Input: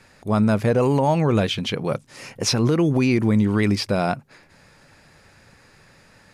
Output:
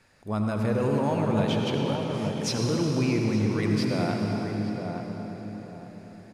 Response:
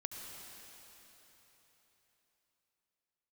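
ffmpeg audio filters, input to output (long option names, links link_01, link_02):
-filter_complex "[0:a]asplit=2[link_01][link_02];[link_02]adelay=867,lowpass=frequency=890:poles=1,volume=-4.5dB,asplit=2[link_03][link_04];[link_04]adelay=867,lowpass=frequency=890:poles=1,volume=0.32,asplit=2[link_05][link_06];[link_06]adelay=867,lowpass=frequency=890:poles=1,volume=0.32,asplit=2[link_07][link_08];[link_08]adelay=867,lowpass=frequency=890:poles=1,volume=0.32[link_09];[link_01][link_03][link_05][link_07][link_09]amix=inputs=5:normalize=0[link_10];[1:a]atrim=start_sample=2205[link_11];[link_10][link_11]afir=irnorm=-1:irlink=0,volume=-5.5dB"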